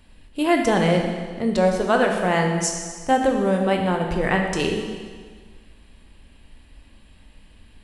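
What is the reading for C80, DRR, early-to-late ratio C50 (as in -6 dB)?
5.5 dB, 2.5 dB, 4.5 dB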